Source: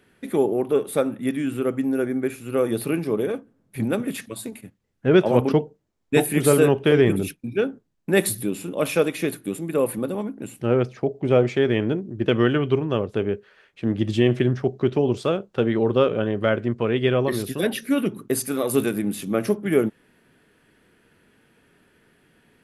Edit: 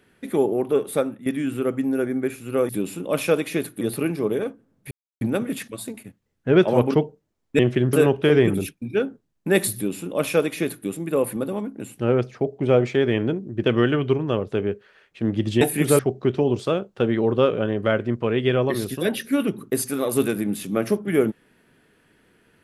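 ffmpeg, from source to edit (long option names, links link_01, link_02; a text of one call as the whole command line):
ffmpeg -i in.wav -filter_complex "[0:a]asplit=9[link_01][link_02][link_03][link_04][link_05][link_06][link_07][link_08][link_09];[link_01]atrim=end=1.26,asetpts=PTS-STARTPTS,afade=type=out:start_time=0.97:duration=0.29:silence=0.251189[link_10];[link_02]atrim=start=1.26:end=2.692,asetpts=PTS-STARTPTS,afade=type=in:duration=0.004:curve=hsin:silence=0.251189[link_11];[link_03]atrim=start=8.368:end=9.492[link_12];[link_04]atrim=start=2.688:end=3.79,asetpts=PTS-STARTPTS,afade=type=out:start_time=1.098:duration=0.004:curve=hsin,apad=pad_dur=0.3[link_13];[link_05]atrim=start=3.79:end=6.172,asetpts=PTS-STARTPTS,afade=type=in:duration=0.004:curve=hsin[link_14];[link_06]atrim=start=14.228:end=14.572[link_15];[link_07]atrim=start=6.548:end=14.232[link_16];[link_08]atrim=start=6.168:end=6.552[link_17];[link_09]atrim=start=14.568[link_18];[link_10][link_11]concat=n=2:v=0:a=1[link_19];[link_19][link_12]acrossfade=duration=0.004:curve1=hsin:curve2=hsin[link_20];[link_13][link_14]concat=n=2:v=0:a=1[link_21];[link_20][link_21]acrossfade=duration=0.004:curve1=hsin:curve2=hsin[link_22];[link_22][link_15]acrossfade=duration=0.004:curve1=hsin:curve2=hsin[link_23];[link_23][link_16]acrossfade=duration=0.004:curve1=hsin:curve2=hsin[link_24];[link_24][link_17]acrossfade=duration=0.004:curve1=hsin:curve2=hsin[link_25];[link_25][link_18]acrossfade=duration=0.004:curve1=hsin:curve2=hsin" out.wav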